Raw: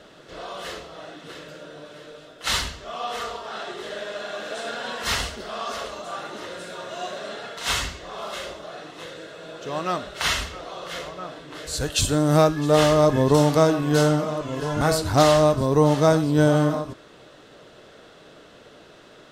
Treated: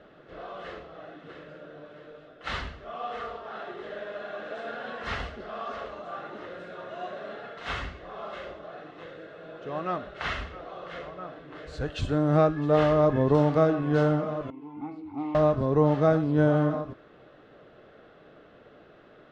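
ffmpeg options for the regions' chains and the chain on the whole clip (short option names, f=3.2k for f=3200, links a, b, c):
-filter_complex "[0:a]asettb=1/sr,asplit=3[a][b][c];[a]atrim=end=14.504[d];[b]atrim=start=14.5:end=15.35,asetpts=PTS-STARTPTS,afade=t=in:d=0.004:c=qsin,afade=t=out:st=0.846:d=0.004:c=qsin,asplit=3[e][f][g];[e]bandpass=f=300:t=q:w=8,volume=0dB[h];[f]bandpass=f=870:t=q:w=8,volume=-6dB[i];[g]bandpass=f=2.24k:t=q:w=8,volume=-9dB[j];[h][i][j]amix=inputs=3:normalize=0,bandreject=f=60:t=h:w=6,bandreject=f=120:t=h:w=6,bandreject=f=180:t=h:w=6,bandreject=f=240:t=h:w=6,bandreject=f=300:t=h:w=6,bandreject=f=360:t=h:w=6,bandreject=f=420:t=h:w=6,bandreject=f=480:t=h:w=6[k];[c]atrim=start=15.346[l];[d][k]acrossfade=d=0.004:c1=hsin:c2=qsin[m];[m][l]acrossfade=d=0.004:c1=qsin:c2=hsin,lowpass=2k,bandreject=f=960:w=11,volume=-4dB"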